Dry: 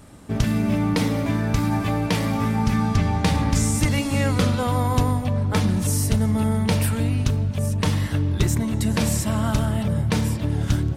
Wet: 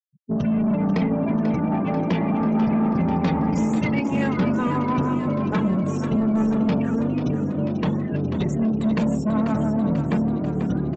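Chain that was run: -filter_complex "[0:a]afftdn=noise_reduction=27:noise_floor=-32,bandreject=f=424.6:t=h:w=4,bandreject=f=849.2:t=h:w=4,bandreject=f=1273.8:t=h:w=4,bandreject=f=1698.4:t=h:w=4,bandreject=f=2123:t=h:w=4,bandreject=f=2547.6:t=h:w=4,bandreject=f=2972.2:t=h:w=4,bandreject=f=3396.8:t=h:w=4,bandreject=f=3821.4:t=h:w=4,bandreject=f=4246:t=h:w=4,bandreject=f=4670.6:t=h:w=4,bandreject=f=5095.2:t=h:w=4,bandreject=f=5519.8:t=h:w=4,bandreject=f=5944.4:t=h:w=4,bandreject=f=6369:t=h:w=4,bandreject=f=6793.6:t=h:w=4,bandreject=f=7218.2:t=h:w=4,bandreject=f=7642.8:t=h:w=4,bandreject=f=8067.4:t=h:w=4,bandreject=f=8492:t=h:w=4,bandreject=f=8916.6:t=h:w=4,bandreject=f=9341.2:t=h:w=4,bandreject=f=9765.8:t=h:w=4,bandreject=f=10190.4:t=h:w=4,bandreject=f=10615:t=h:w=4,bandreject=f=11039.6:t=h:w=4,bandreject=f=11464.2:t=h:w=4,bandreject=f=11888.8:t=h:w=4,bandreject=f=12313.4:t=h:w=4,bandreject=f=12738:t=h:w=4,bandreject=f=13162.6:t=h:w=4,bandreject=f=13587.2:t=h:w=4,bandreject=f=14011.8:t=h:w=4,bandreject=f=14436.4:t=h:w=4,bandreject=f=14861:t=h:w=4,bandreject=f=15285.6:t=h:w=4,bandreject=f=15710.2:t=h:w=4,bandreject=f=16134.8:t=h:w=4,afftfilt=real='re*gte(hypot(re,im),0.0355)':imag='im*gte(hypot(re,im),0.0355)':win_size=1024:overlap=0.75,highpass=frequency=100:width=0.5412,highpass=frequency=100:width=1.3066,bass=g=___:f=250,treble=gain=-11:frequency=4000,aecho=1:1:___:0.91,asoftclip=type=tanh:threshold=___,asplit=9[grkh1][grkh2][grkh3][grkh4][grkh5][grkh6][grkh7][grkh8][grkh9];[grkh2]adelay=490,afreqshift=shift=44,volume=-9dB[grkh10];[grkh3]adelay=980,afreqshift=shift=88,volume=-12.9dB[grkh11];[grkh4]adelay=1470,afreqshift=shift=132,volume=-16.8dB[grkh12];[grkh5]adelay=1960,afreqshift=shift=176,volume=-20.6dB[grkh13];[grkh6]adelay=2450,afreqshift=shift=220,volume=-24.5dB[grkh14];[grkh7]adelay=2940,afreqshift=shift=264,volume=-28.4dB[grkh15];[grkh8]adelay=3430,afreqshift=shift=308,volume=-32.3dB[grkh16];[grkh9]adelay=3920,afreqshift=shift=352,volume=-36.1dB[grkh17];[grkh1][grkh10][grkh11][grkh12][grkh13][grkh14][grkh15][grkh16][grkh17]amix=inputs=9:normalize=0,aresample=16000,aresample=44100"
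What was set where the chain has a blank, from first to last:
3, 4.8, -17dB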